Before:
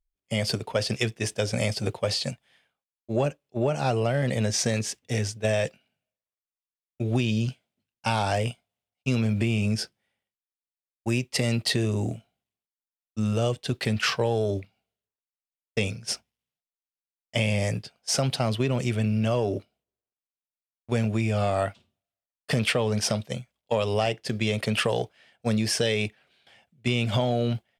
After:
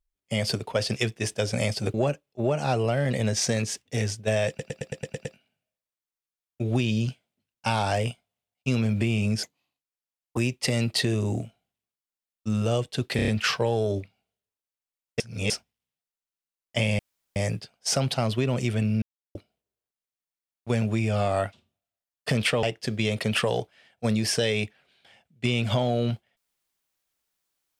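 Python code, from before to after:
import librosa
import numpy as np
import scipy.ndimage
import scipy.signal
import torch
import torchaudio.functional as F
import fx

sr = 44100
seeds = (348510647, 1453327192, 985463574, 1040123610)

y = fx.edit(x, sr, fx.cut(start_s=1.94, length_s=1.17),
    fx.stutter(start_s=5.65, slice_s=0.11, count=8),
    fx.speed_span(start_s=9.83, length_s=1.25, speed=1.33),
    fx.stutter(start_s=13.87, slice_s=0.03, count=5),
    fx.reverse_span(start_s=15.79, length_s=0.3),
    fx.insert_room_tone(at_s=17.58, length_s=0.37),
    fx.silence(start_s=19.24, length_s=0.33),
    fx.cut(start_s=22.85, length_s=1.2), tone=tone)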